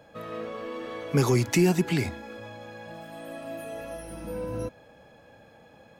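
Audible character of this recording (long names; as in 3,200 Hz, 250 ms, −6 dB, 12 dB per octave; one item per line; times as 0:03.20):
background noise floor −55 dBFS
spectral slope −6.0 dB per octave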